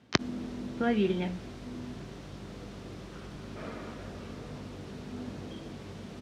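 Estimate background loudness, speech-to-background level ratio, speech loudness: -42.5 LUFS, 11.5 dB, -31.0 LUFS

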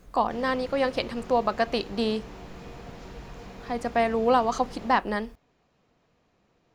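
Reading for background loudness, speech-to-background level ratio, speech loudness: -44.0 LUFS, 17.5 dB, -26.5 LUFS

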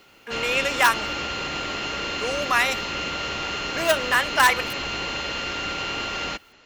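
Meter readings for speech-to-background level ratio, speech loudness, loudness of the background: 5.0 dB, -22.5 LUFS, -27.5 LUFS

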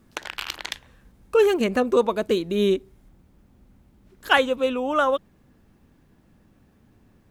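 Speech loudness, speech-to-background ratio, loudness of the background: -22.0 LUFS, 11.0 dB, -33.0 LUFS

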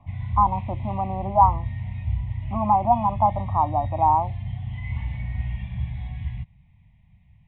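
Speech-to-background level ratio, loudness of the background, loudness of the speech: 8.0 dB, -31.0 LUFS, -23.0 LUFS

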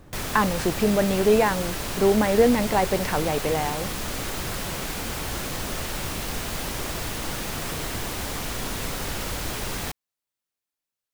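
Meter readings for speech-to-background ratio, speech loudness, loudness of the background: 7.0 dB, -22.5 LUFS, -29.5 LUFS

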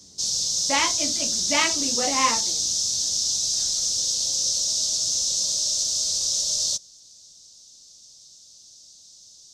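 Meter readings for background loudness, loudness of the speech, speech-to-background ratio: -21.5 LUFS, -26.0 LUFS, -4.5 dB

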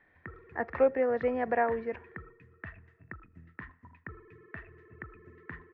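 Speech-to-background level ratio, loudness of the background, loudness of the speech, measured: 19.0 dB, -49.0 LUFS, -30.0 LUFS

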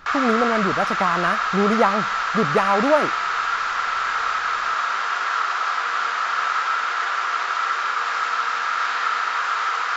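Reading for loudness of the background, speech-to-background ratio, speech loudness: -22.0 LUFS, 0.0 dB, -22.0 LUFS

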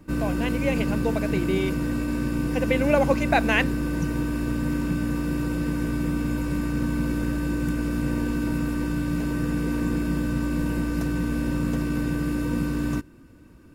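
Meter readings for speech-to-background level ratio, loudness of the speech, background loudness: 0.5 dB, -26.0 LUFS, -26.5 LUFS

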